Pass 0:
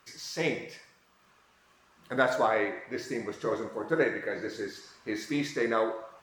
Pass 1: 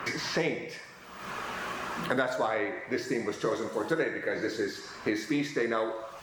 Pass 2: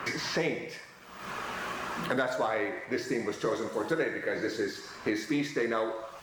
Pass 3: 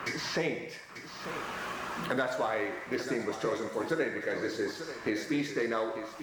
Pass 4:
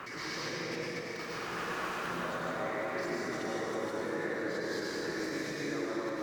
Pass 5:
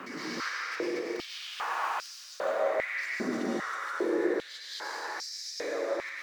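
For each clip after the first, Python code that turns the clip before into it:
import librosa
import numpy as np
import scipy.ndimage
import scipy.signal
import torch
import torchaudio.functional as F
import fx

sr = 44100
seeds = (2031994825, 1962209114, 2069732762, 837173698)

y1 = fx.band_squash(x, sr, depth_pct=100)
y2 = fx.leveller(y1, sr, passes=1)
y2 = F.gain(torch.from_numpy(y2), -4.0).numpy()
y3 = y2 + 10.0 ** (-11.0 / 20.0) * np.pad(y2, (int(892 * sr / 1000.0), 0))[:len(y2)]
y3 = F.gain(torch.from_numpy(y3), -1.5).numpy()
y4 = fx.level_steps(y3, sr, step_db=22)
y4 = fx.rev_plate(y4, sr, seeds[0], rt60_s=4.7, hf_ratio=0.55, predelay_ms=80, drr_db=-7.0)
y5 = fx.filter_held_highpass(y4, sr, hz=2.5, low_hz=230.0, high_hz=5100.0)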